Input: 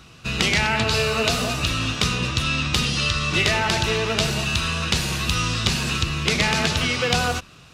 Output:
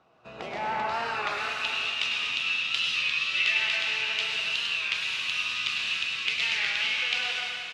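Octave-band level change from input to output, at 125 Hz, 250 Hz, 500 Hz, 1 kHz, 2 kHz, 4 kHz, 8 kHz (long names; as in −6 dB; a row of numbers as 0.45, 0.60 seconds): below −25 dB, below −20 dB, −14.5 dB, −7.0 dB, −3.0 dB, −4.5 dB, −15.0 dB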